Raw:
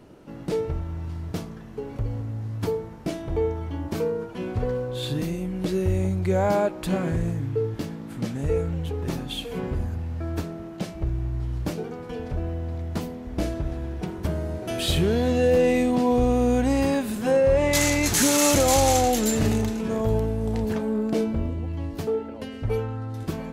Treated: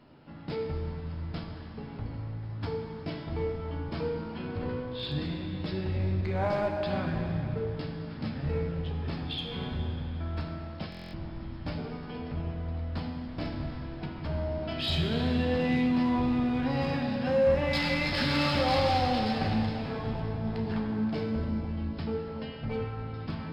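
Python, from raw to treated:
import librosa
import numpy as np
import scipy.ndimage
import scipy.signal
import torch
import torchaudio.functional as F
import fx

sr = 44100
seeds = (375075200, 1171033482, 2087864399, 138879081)

p1 = fx.octave_divider(x, sr, octaves=1, level_db=-6.0)
p2 = fx.brickwall_lowpass(p1, sr, high_hz=5400.0)
p3 = fx.peak_eq(p2, sr, hz=410.0, db=-9.0, octaves=0.9)
p4 = fx.hum_notches(p3, sr, base_hz=60, count=3)
p5 = fx.doubler(p4, sr, ms=13.0, db=-9.0)
p6 = np.clip(10.0 ** (23.5 / 20.0) * p5, -1.0, 1.0) / 10.0 ** (23.5 / 20.0)
p7 = p5 + (p6 * 10.0 ** (-3.5 / 20.0))
p8 = fx.low_shelf(p7, sr, hz=89.0, db=-8.0)
p9 = fx.rev_plate(p8, sr, seeds[0], rt60_s=3.0, hf_ratio=0.8, predelay_ms=0, drr_db=2.0)
p10 = fx.buffer_glitch(p9, sr, at_s=(10.9,), block=1024, repeats=9)
y = p10 * 10.0 ** (-8.5 / 20.0)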